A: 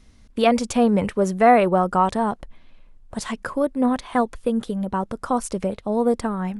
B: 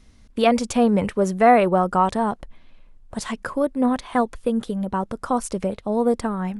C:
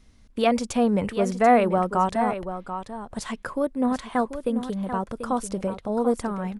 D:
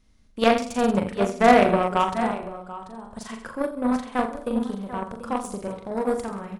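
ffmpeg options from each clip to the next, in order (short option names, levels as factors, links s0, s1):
-af anull
-af "aecho=1:1:738:0.316,volume=0.668"
-af "aecho=1:1:40|84|132.4|185.6|244.2:0.631|0.398|0.251|0.158|0.1,aeval=exprs='0.668*(cos(1*acos(clip(val(0)/0.668,-1,1)))-cos(1*PI/2))+0.0596*(cos(7*acos(clip(val(0)/0.668,-1,1)))-cos(7*PI/2))':c=same,volume=1.19"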